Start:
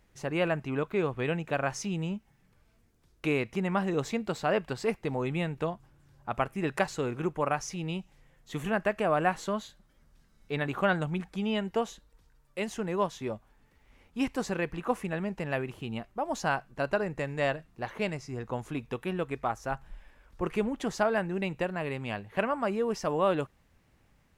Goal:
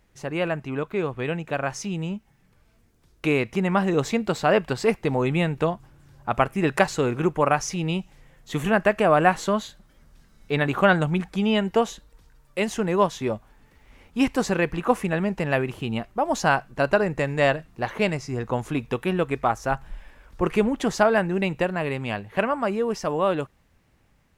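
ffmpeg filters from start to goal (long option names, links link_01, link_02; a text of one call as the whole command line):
ffmpeg -i in.wav -af "dynaudnorm=framelen=580:gausssize=11:maxgain=6dB,volume=2.5dB" out.wav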